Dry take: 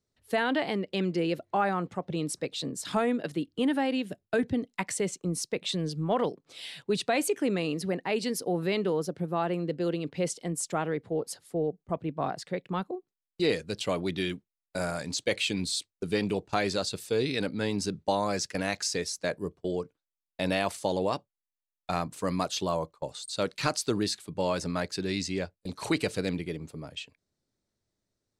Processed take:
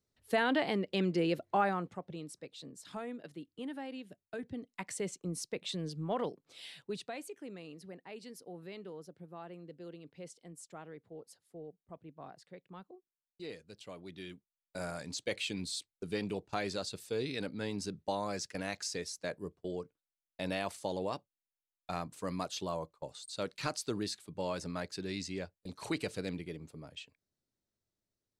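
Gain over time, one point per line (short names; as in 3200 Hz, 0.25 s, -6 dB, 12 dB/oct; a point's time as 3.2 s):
1.6 s -2.5 dB
2.32 s -15 dB
4.39 s -15 dB
5.02 s -7.5 dB
6.71 s -7.5 dB
7.27 s -18.5 dB
13.99 s -18.5 dB
14.86 s -8 dB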